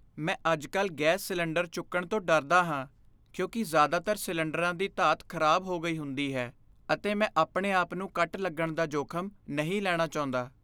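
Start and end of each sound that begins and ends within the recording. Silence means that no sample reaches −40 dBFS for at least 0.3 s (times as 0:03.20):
0:03.34–0:06.49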